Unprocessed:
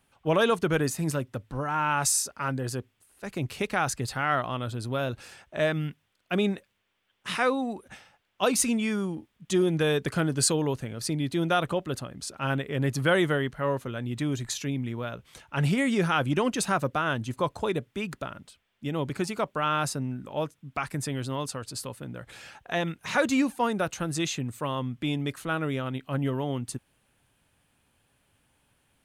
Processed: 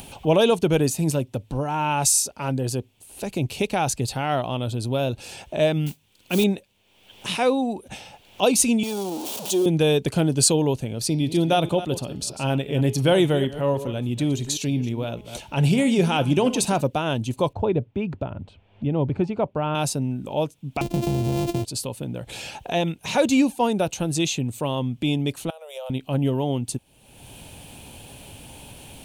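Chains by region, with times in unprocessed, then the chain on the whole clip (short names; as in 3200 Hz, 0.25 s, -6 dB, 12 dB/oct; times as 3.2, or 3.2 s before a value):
5.86–6.44 bell 660 Hz -10.5 dB 0.47 oct + modulation noise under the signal 13 dB
8.83–9.66 zero-crossing step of -29 dBFS + HPF 420 Hz + bell 2100 Hz -12 dB 1.1 oct
11.05–16.81 reverse delay 0.16 s, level -13.5 dB + de-hum 209.6 Hz, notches 27
17.53–19.75 LPF 1700 Hz + bell 94 Hz +12.5 dB 0.66 oct
20.81–21.65 sample sorter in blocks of 128 samples + low shelf 480 Hz +11.5 dB + compressor, threshold -25 dBFS
25.5–25.9 steep high-pass 490 Hz 96 dB/oct + bell 1900 Hz -14.5 dB 2.5 oct + compressor 4:1, threshold -44 dBFS
whole clip: upward compressor, threshold -30 dBFS; band shelf 1500 Hz -11.5 dB 1.1 oct; notch 5000 Hz, Q 25; gain +6 dB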